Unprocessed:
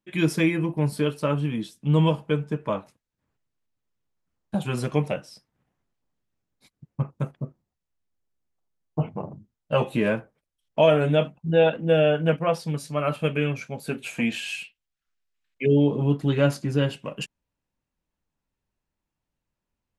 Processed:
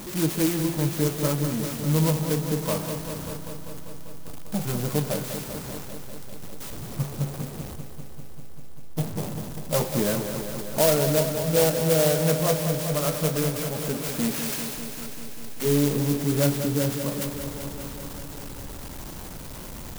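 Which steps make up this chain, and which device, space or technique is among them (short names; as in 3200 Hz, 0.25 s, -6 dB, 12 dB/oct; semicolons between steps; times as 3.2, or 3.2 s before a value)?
7.18–9.23 Bessel low-pass 750 Hz, order 6; early CD player with a faulty converter (zero-crossing step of -27.5 dBFS; clock jitter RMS 0.13 ms); lo-fi delay 0.197 s, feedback 80%, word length 8-bit, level -8.5 dB; gain -3.5 dB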